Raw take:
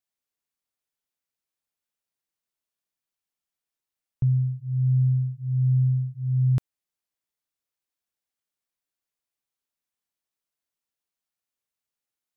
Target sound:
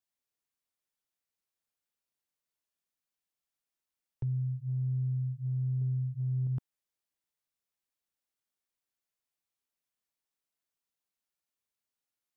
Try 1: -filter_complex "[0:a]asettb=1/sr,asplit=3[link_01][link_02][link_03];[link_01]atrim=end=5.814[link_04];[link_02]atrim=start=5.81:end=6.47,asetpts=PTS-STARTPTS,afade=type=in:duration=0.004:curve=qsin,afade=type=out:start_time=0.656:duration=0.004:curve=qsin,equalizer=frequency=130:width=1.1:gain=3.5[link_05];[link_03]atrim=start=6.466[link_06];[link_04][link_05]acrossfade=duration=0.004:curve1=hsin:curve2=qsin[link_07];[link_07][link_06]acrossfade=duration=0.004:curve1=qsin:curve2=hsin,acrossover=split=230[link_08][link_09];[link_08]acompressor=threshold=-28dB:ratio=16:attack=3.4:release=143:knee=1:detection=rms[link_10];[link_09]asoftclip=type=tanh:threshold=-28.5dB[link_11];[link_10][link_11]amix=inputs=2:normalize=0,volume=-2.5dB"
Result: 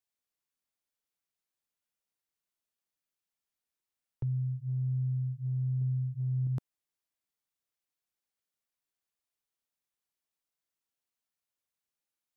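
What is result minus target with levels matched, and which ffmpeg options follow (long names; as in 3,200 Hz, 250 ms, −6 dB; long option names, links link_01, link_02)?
soft clipping: distortion −7 dB
-filter_complex "[0:a]asettb=1/sr,asplit=3[link_01][link_02][link_03];[link_01]atrim=end=5.814[link_04];[link_02]atrim=start=5.81:end=6.47,asetpts=PTS-STARTPTS,afade=type=in:duration=0.004:curve=qsin,afade=type=out:start_time=0.656:duration=0.004:curve=qsin,equalizer=frequency=130:width=1.1:gain=3.5[link_05];[link_03]atrim=start=6.466[link_06];[link_04][link_05]acrossfade=duration=0.004:curve1=hsin:curve2=qsin[link_07];[link_07][link_06]acrossfade=duration=0.004:curve1=qsin:curve2=hsin,acrossover=split=230[link_08][link_09];[link_08]acompressor=threshold=-28dB:ratio=16:attack=3.4:release=143:knee=1:detection=rms[link_10];[link_09]asoftclip=type=tanh:threshold=-36.5dB[link_11];[link_10][link_11]amix=inputs=2:normalize=0,volume=-2.5dB"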